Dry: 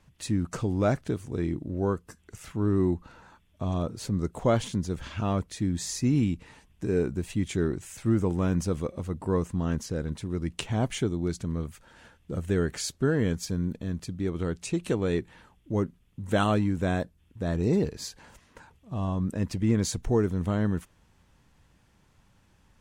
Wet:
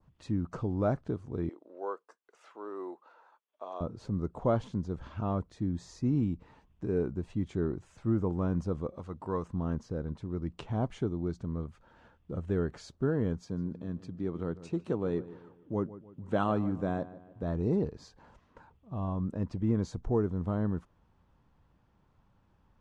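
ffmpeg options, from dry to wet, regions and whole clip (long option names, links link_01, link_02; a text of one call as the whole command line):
ffmpeg -i in.wav -filter_complex "[0:a]asettb=1/sr,asplit=3[link_01][link_02][link_03];[link_01]atrim=end=1.494[link_04];[link_02]atrim=start=1.49:end=3.81,asetpts=PTS-STARTPTS,afade=type=in:duration=0.004:curve=qsin,afade=type=out:start_time=2.316:duration=0.004:curve=qsin,agate=range=-33dB:threshold=-51dB:ratio=3:release=100:detection=peak,highpass=frequency=460:width=0.5412,highpass=frequency=460:width=1.3066,acompressor=mode=upward:threshold=-56dB:ratio=2.5:attack=3.2:release=140:knee=2.83:detection=peak[link_05];[link_03]atrim=start=3.806[link_06];[link_04][link_05]acrossfade=duration=0.004:curve1=hsin:curve2=qsin[link_07];[link_07][link_06]acrossfade=duration=0.004:curve1=qsin:curve2=hsin,asettb=1/sr,asplit=3[link_08][link_09][link_10];[link_08]atrim=end=8.944[link_11];[link_09]atrim=start=8.94:end=9.48,asetpts=PTS-STARTPTS,afade=type=in:duration=0.004:curve=qsin,afade=type=out:start_time=0.536:duration=0.004:curve=qsin,highpass=49,tiltshelf=frequency=730:gain=-5.5[link_12];[link_10]atrim=start=9.476[link_13];[link_11][link_12]acrossfade=duration=0.004:curve1=hsin:curve2=qsin[link_14];[link_14][link_13]acrossfade=duration=0.004:curve1=qsin:curve2=hsin,asettb=1/sr,asplit=3[link_15][link_16][link_17];[link_15]atrim=end=13.414[link_18];[link_16]atrim=start=13.41:end=17.43,asetpts=PTS-STARTPTS,afade=type=in:duration=0.004:curve=qsin,afade=type=out:start_time=4.016:duration=0.004:curve=qsin,highpass=110,asplit=2[link_19][link_20];[link_20]adelay=150,lowpass=frequency=2600:poles=1,volume=-15.5dB,asplit=2[link_21][link_22];[link_22]adelay=150,lowpass=frequency=2600:poles=1,volume=0.44,asplit=2[link_23][link_24];[link_24]adelay=150,lowpass=frequency=2600:poles=1,volume=0.44,asplit=2[link_25][link_26];[link_26]adelay=150,lowpass=frequency=2600:poles=1,volume=0.44[link_27];[link_19][link_21][link_23][link_25][link_27]amix=inputs=5:normalize=0,atrim=end_sample=177282[link_28];[link_17]atrim=start=17.426[link_29];[link_18][link_28]acrossfade=duration=0.004:curve1=hsin:curve2=qsin[link_30];[link_30][link_29]acrossfade=duration=0.004:curve1=qsin:curve2=hsin,adynamicequalizer=threshold=0.00251:dfrequency=2600:dqfactor=1.1:tfrequency=2600:tqfactor=1.1:attack=5:release=100:ratio=0.375:range=2.5:mode=cutabove:tftype=bell,lowpass=4200,highshelf=frequency=1500:width_type=q:width=1.5:gain=-6,volume=-4.5dB" out.wav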